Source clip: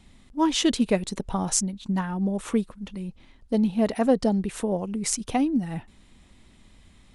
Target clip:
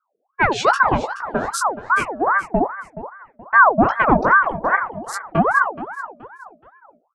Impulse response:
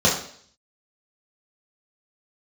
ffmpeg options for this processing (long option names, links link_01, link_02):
-filter_complex "[0:a]aeval=exprs='val(0)+0.5*0.0282*sgn(val(0))':channel_layout=same,afftdn=noise_reduction=31:noise_floor=-32,agate=range=-49dB:threshold=-24dB:ratio=16:detection=peak,equalizer=frequency=1200:width=2.4:gain=7,bandreject=frequency=60:width_type=h:width=6,bandreject=frequency=120:width_type=h:width=6,bandreject=frequency=180:width_type=h:width=6,bandreject=frequency=240:width_type=h:width=6,bandreject=frequency=300:width_type=h:width=6,bandreject=frequency=360:width_type=h:width=6,bandreject=frequency=420:width_type=h:width=6,bandreject=frequency=480:width_type=h:width=6,acontrast=83,bass=frequency=250:gain=13,treble=frequency=4000:gain=-4,flanger=delay=16:depth=3.7:speed=2.3,asplit=2[link_01][link_02];[link_02]aecho=0:1:425|850|1275:0.2|0.0678|0.0231[link_03];[link_01][link_03]amix=inputs=2:normalize=0,aeval=exprs='val(0)*sin(2*PI*900*n/s+900*0.55/2.5*sin(2*PI*2.5*n/s))':channel_layout=same"